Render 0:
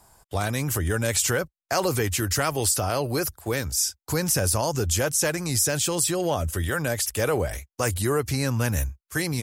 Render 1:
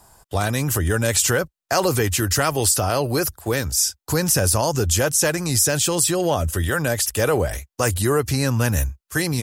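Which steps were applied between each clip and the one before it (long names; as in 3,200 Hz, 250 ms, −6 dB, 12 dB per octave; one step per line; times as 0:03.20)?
notch filter 2,200 Hz, Q 15
level +4.5 dB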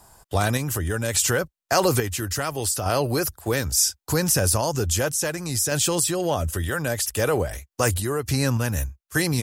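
sample-and-hold tremolo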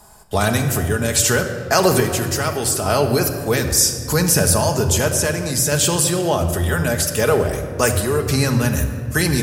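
rectangular room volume 3,600 cubic metres, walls mixed, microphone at 1.4 metres
level +4 dB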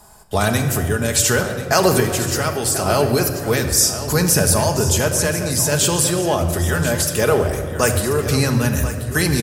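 single-tap delay 1,036 ms −12.5 dB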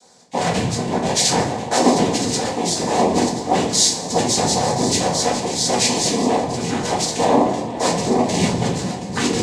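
phaser with its sweep stopped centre 450 Hz, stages 4
cochlear-implant simulation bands 6
rectangular room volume 250 cubic metres, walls furnished, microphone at 1.9 metres
level −1 dB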